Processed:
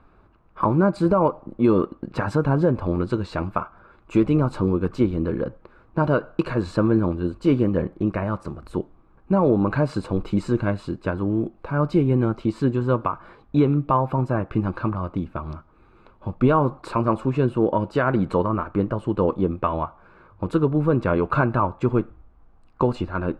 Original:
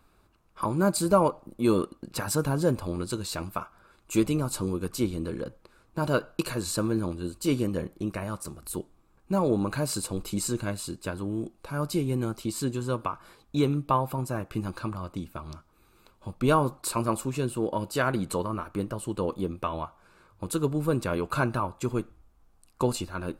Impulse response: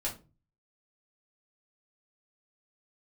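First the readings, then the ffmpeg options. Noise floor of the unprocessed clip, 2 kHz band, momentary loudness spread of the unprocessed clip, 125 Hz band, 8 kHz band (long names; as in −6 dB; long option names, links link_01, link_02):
−63 dBFS, +4.5 dB, 12 LU, +7.5 dB, below −15 dB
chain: -af "lowpass=1800,alimiter=limit=-17dB:level=0:latency=1:release=198,volume=8.5dB"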